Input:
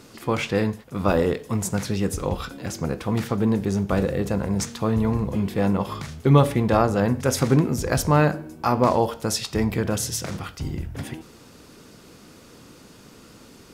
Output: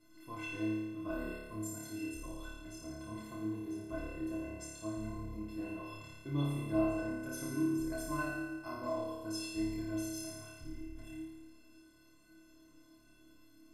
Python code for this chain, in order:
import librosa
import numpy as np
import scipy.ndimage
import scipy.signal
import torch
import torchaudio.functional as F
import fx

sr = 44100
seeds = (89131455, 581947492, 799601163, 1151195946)

p1 = fx.low_shelf(x, sr, hz=210.0, db=11.0)
p2 = fx.stiff_resonator(p1, sr, f0_hz=310.0, decay_s=0.36, stiffness=0.03)
p3 = p2 + fx.room_flutter(p2, sr, wall_m=4.8, rt60_s=1.3, dry=0)
y = F.gain(torch.from_numpy(p3), -7.0).numpy()